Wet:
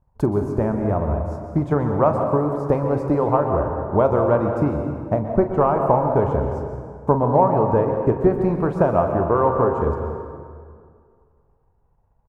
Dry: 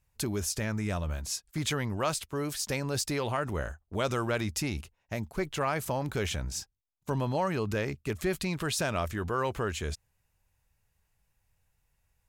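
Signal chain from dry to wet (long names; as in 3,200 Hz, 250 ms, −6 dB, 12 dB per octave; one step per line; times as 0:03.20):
drawn EQ curve 170 Hz 0 dB, 950 Hz +5 dB, 2,100 Hz −21 dB, 3,800 Hz −30 dB
transient designer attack +6 dB, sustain −5 dB
double-tracking delay 41 ms −11.5 dB
dense smooth reverb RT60 2.1 s, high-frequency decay 0.65×, pre-delay 110 ms, DRR 4 dB
level +8 dB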